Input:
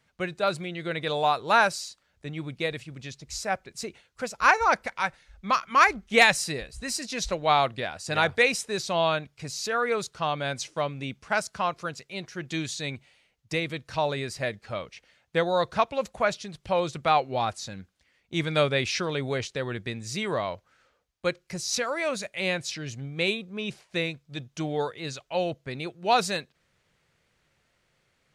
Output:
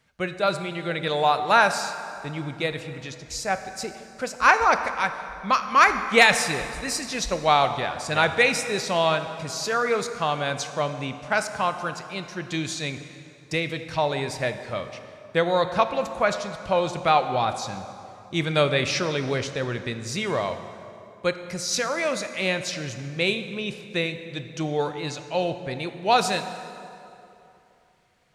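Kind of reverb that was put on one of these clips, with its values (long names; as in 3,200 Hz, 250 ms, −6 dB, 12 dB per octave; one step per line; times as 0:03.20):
dense smooth reverb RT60 2.9 s, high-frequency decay 0.65×, DRR 8.5 dB
level +2.5 dB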